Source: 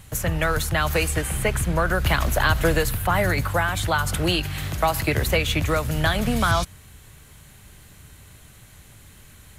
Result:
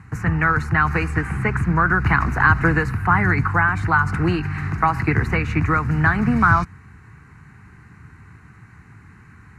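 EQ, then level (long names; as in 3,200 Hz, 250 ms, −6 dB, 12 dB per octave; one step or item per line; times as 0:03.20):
band-pass filter 100–2,300 Hz
phaser with its sweep stopped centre 1,400 Hz, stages 4
+8.0 dB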